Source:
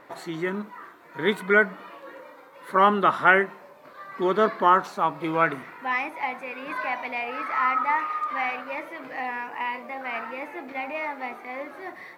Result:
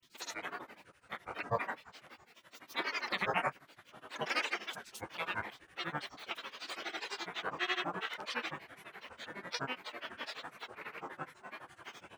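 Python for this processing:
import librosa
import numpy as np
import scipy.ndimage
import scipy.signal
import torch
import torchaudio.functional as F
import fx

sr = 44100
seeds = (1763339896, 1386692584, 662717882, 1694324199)

y = fx.granulator(x, sr, seeds[0], grain_ms=100.0, per_s=12.0, spray_ms=100.0, spread_st=12)
y = fx.spec_gate(y, sr, threshold_db=-15, keep='weak')
y = y * 10.0 ** (2.0 / 20.0)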